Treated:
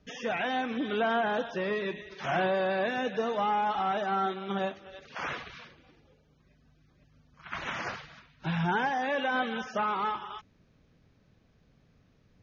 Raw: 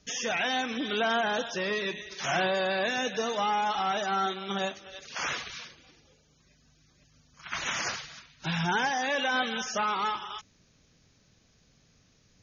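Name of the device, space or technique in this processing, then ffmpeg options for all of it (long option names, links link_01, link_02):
phone in a pocket: -af "lowpass=3800,highshelf=frequency=2100:gain=-10.5,volume=1.5dB"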